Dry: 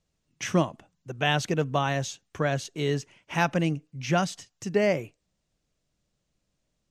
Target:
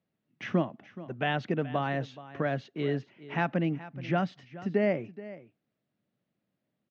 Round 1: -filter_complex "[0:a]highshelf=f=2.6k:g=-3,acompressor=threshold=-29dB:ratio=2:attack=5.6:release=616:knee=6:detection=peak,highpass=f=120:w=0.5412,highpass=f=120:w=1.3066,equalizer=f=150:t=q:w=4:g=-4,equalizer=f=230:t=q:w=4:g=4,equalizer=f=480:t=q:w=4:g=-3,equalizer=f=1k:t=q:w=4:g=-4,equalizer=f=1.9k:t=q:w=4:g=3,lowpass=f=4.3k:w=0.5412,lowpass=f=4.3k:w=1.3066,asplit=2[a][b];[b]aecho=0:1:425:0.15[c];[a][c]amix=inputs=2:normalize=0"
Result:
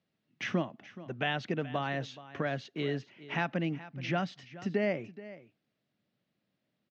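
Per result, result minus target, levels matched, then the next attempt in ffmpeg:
4000 Hz band +5.5 dB; compressor: peak gain reduction +4.5 dB
-filter_complex "[0:a]highshelf=f=2.6k:g=-13.5,acompressor=threshold=-29dB:ratio=2:attack=5.6:release=616:knee=6:detection=peak,highpass=f=120:w=0.5412,highpass=f=120:w=1.3066,equalizer=f=150:t=q:w=4:g=-4,equalizer=f=230:t=q:w=4:g=4,equalizer=f=480:t=q:w=4:g=-3,equalizer=f=1k:t=q:w=4:g=-4,equalizer=f=1.9k:t=q:w=4:g=3,lowpass=f=4.3k:w=0.5412,lowpass=f=4.3k:w=1.3066,asplit=2[a][b];[b]aecho=0:1:425:0.15[c];[a][c]amix=inputs=2:normalize=0"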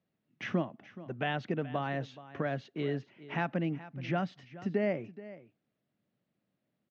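compressor: peak gain reduction +4.5 dB
-filter_complex "[0:a]highshelf=f=2.6k:g=-13.5,acompressor=threshold=-20dB:ratio=2:attack=5.6:release=616:knee=6:detection=peak,highpass=f=120:w=0.5412,highpass=f=120:w=1.3066,equalizer=f=150:t=q:w=4:g=-4,equalizer=f=230:t=q:w=4:g=4,equalizer=f=480:t=q:w=4:g=-3,equalizer=f=1k:t=q:w=4:g=-4,equalizer=f=1.9k:t=q:w=4:g=3,lowpass=f=4.3k:w=0.5412,lowpass=f=4.3k:w=1.3066,asplit=2[a][b];[b]aecho=0:1:425:0.15[c];[a][c]amix=inputs=2:normalize=0"

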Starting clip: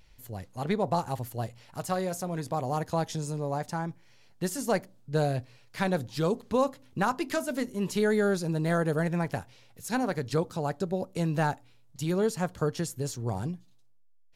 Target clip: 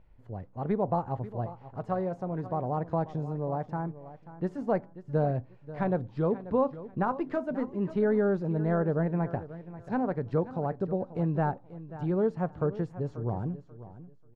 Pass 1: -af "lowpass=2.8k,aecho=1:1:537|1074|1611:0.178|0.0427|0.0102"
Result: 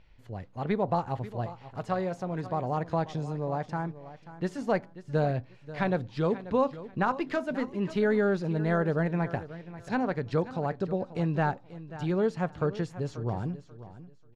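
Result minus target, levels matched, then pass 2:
2000 Hz band +6.5 dB
-af "lowpass=1.1k,aecho=1:1:537|1074|1611:0.178|0.0427|0.0102"

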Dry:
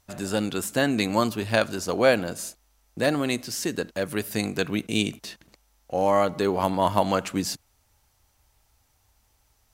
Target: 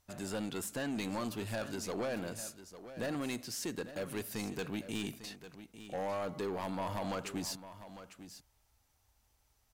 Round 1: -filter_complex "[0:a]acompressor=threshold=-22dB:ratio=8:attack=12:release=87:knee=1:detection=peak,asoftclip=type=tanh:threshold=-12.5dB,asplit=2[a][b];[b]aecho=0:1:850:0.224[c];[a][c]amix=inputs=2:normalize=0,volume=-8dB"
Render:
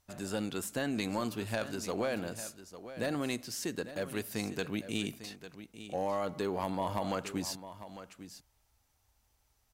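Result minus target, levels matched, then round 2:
soft clip: distortion -12 dB
-filter_complex "[0:a]acompressor=threshold=-22dB:ratio=8:attack=12:release=87:knee=1:detection=peak,asoftclip=type=tanh:threshold=-23.5dB,asplit=2[a][b];[b]aecho=0:1:850:0.224[c];[a][c]amix=inputs=2:normalize=0,volume=-8dB"

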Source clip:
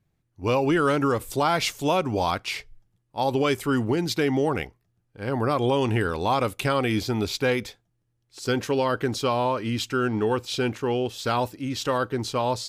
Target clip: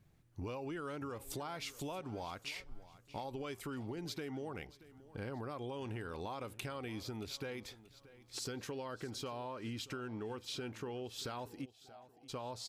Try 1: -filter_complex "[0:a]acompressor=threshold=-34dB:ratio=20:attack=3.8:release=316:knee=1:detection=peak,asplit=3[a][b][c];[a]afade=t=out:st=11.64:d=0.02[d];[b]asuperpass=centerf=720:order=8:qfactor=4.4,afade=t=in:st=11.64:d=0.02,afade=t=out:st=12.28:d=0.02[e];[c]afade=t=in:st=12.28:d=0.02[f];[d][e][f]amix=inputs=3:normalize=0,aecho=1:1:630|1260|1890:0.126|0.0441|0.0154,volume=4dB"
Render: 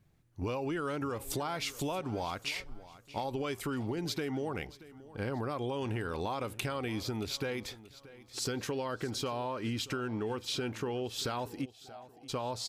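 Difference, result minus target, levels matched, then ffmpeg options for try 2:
compressor: peak gain reduction -7.5 dB
-filter_complex "[0:a]acompressor=threshold=-42dB:ratio=20:attack=3.8:release=316:knee=1:detection=peak,asplit=3[a][b][c];[a]afade=t=out:st=11.64:d=0.02[d];[b]asuperpass=centerf=720:order=8:qfactor=4.4,afade=t=in:st=11.64:d=0.02,afade=t=out:st=12.28:d=0.02[e];[c]afade=t=in:st=12.28:d=0.02[f];[d][e][f]amix=inputs=3:normalize=0,aecho=1:1:630|1260|1890:0.126|0.0441|0.0154,volume=4dB"

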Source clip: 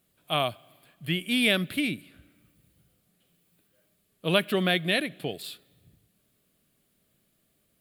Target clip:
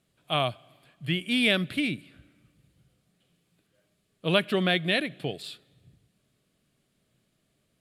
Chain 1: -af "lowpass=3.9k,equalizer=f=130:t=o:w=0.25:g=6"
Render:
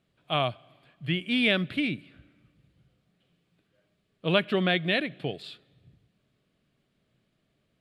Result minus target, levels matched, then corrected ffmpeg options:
8000 Hz band -11.5 dB
-af "lowpass=8k,equalizer=f=130:t=o:w=0.25:g=6"

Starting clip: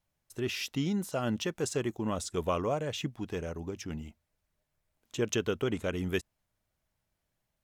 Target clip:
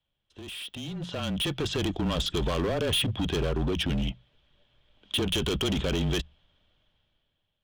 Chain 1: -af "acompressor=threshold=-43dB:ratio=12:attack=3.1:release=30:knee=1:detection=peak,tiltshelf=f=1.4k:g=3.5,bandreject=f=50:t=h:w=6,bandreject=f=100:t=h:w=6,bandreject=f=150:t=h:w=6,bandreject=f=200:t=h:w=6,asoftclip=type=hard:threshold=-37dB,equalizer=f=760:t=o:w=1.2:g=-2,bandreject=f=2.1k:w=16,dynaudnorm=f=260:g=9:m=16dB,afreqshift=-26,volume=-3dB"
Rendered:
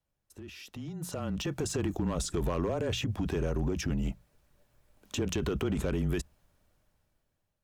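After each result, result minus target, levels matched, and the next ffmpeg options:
4000 Hz band -8.5 dB; compressor: peak gain reduction +6 dB
-af "acompressor=threshold=-43dB:ratio=12:attack=3.1:release=30:knee=1:detection=peak,lowpass=f=3.3k:t=q:w=9.3,tiltshelf=f=1.4k:g=3.5,bandreject=f=50:t=h:w=6,bandreject=f=100:t=h:w=6,bandreject=f=150:t=h:w=6,bandreject=f=200:t=h:w=6,asoftclip=type=hard:threshold=-37dB,equalizer=f=760:t=o:w=1.2:g=-2,bandreject=f=2.1k:w=16,dynaudnorm=f=260:g=9:m=16dB,afreqshift=-26,volume=-3dB"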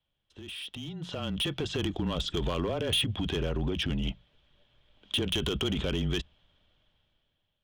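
compressor: peak gain reduction +6 dB
-af "acompressor=threshold=-36.5dB:ratio=12:attack=3.1:release=30:knee=1:detection=peak,lowpass=f=3.3k:t=q:w=9.3,tiltshelf=f=1.4k:g=3.5,bandreject=f=50:t=h:w=6,bandreject=f=100:t=h:w=6,bandreject=f=150:t=h:w=6,bandreject=f=200:t=h:w=6,asoftclip=type=hard:threshold=-37dB,equalizer=f=760:t=o:w=1.2:g=-2,bandreject=f=2.1k:w=16,dynaudnorm=f=260:g=9:m=16dB,afreqshift=-26,volume=-3dB"

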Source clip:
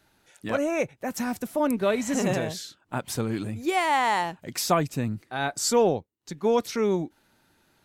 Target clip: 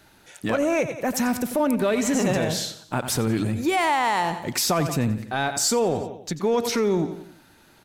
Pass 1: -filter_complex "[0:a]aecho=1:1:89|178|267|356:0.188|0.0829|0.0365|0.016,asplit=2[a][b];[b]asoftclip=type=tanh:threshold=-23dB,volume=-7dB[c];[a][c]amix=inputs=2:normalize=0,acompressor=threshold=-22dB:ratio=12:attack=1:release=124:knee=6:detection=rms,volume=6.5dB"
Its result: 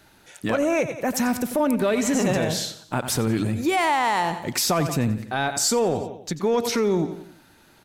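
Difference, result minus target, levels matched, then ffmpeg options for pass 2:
soft clip: distortion -6 dB
-filter_complex "[0:a]aecho=1:1:89|178|267|356:0.188|0.0829|0.0365|0.016,asplit=2[a][b];[b]asoftclip=type=tanh:threshold=-33.5dB,volume=-7dB[c];[a][c]amix=inputs=2:normalize=0,acompressor=threshold=-22dB:ratio=12:attack=1:release=124:knee=6:detection=rms,volume=6.5dB"

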